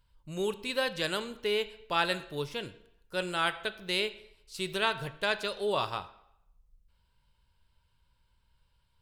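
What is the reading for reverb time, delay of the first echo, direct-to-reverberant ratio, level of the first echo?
0.80 s, none, 12.0 dB, none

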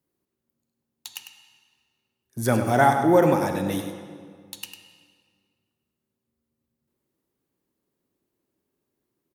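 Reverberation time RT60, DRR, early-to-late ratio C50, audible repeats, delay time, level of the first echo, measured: 1.9 s, 4.5 dB, 5.0 dB, 1, 0.1 s, -9.5 dB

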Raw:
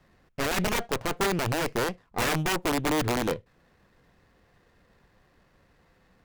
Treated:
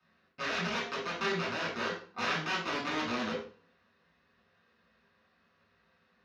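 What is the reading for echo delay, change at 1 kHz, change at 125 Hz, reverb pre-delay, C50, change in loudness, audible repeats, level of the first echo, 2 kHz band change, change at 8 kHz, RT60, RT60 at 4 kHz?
none, -5.5 dB, -12.0 dB, 3 ms, 4.0 dB, -6.0 dB, none, none, -2.5 dB, -14.0 dB, 0.45 s, 0.40 s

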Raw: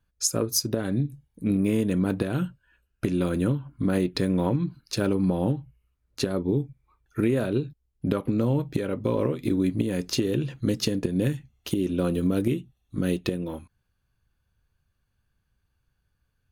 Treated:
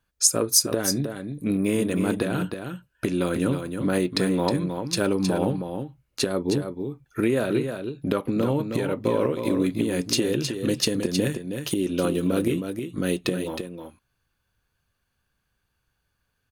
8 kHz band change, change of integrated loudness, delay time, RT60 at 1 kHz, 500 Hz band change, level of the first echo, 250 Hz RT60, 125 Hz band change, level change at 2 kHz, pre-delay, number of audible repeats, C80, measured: +7.0 dB, +1.5 dB, 0.315 s, none, +3.0 dB, -7.0 dB, none, -2.0 dB, +5.0 dB, none, 1, none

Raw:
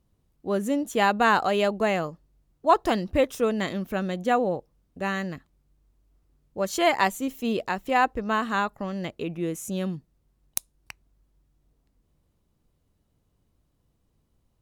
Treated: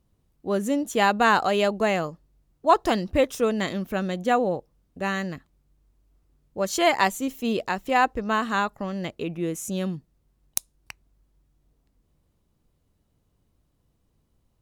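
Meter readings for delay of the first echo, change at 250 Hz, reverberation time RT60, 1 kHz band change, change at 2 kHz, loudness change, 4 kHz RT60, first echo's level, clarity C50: none, +1.0 dB, none, +1.0 dB, +1.5 dB, +1.0 dB, none, none, none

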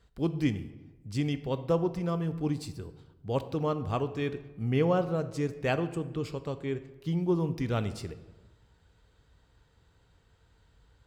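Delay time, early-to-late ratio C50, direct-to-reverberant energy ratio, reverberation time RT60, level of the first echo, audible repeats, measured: none, 13.5 dB, 11.0 dB, 1.2 s, none, none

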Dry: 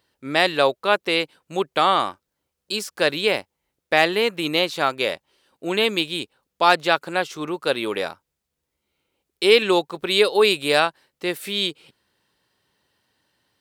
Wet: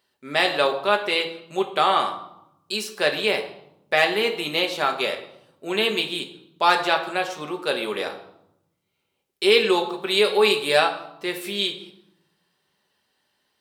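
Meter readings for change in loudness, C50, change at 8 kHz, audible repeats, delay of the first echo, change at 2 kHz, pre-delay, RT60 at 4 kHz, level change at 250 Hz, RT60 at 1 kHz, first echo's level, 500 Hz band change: -1.0 dB, 10.0 dB, -1.5 dB, none, none, -1.0 dB, 5 ms, 0.60 s, -3.0 dB, 0.80 s, none, -1.5 dB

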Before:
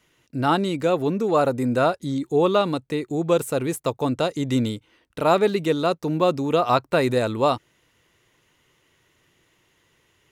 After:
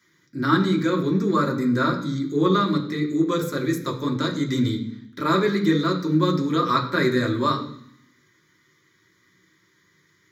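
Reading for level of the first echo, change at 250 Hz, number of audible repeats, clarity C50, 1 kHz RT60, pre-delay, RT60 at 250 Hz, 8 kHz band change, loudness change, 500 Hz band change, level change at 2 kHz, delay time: none, +3.5 dB, none, 9.5 dB, 0.65 s, 3 ms, 0.95 s, -3.5 dB, 0.0 dB, -4.5 dB, +3.0 dB, none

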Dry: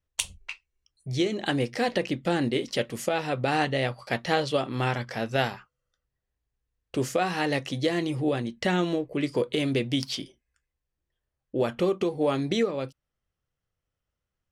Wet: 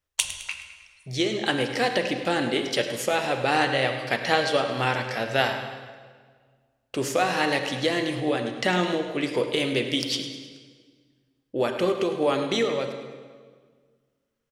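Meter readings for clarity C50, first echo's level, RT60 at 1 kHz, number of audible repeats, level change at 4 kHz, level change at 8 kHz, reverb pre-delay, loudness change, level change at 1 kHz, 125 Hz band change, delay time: 6.5 dB, -13.0 dB, 1.6 s, 3, +5.5 dB, +5.0 dB, 32 ms, +2.5 dB, +4.0 dB, -2.5 dB, 0.105 s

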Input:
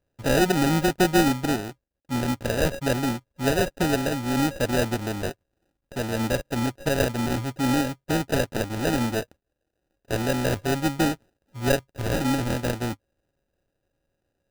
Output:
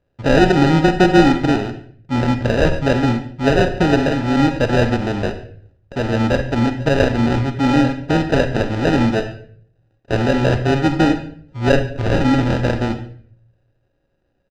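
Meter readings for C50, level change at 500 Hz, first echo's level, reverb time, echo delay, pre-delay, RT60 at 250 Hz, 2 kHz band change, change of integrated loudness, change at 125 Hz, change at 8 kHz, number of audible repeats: 10.0 dB, +8.0 dB, -22.5 dB, 0.55 s, 0.143 s, 34 ms, 0.70 s, +7.5 dB, +8.0 dB, +9.5 dB, -4.5 dB, 1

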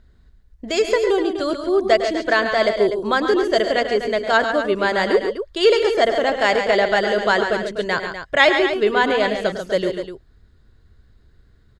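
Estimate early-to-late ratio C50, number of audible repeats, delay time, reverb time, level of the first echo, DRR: none, 3, 0.104 s, none, -11.5 dB, none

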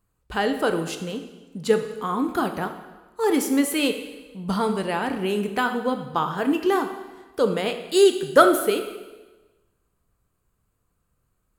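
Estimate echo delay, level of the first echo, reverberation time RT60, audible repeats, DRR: none, none, 1.2 s, none, 6.5 dB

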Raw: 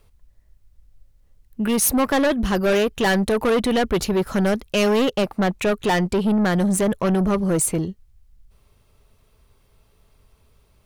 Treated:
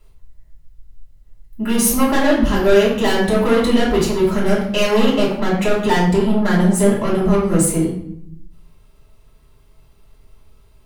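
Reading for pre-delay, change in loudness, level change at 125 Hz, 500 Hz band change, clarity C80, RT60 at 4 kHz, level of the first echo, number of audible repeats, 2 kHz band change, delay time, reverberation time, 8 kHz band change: 3 ms, +4.0 dB, +4.5 dB, +4.5 dB, 7.0 dB, 0.50 s, none, none, +3.0 dB, none, 0.70 s, +2.5 dB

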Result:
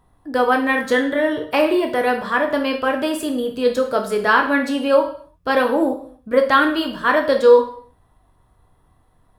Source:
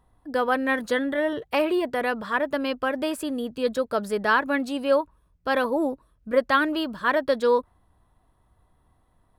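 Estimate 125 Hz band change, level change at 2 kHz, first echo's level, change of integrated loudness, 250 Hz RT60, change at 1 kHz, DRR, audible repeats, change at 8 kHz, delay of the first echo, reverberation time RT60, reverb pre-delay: n/a, +6.0 dB, none, +6.5 dB, 0.55 s, +6.5 dB, 3.0 dB, none, +6.0 dB, none, 0.55 s, 5 ms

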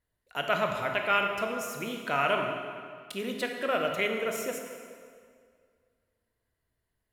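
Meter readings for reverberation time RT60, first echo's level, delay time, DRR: 2.1 s, none, none, 2.5 dB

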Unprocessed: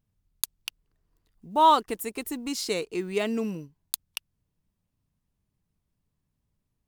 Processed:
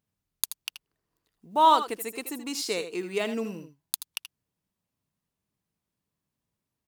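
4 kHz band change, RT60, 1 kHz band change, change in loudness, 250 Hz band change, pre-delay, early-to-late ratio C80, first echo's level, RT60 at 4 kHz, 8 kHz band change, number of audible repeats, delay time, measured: +0.5 dB, none, -0.5 dB, -0.5 dB, -3.0 dB, none, none, -11.5 dB, none, +0.5 dB, 1, 79 ms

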